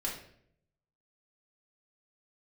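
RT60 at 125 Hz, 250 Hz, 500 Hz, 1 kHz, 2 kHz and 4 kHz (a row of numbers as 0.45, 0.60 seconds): 1.1, 0.85, 0.75, 0.55, 0.60, 0.50 seconds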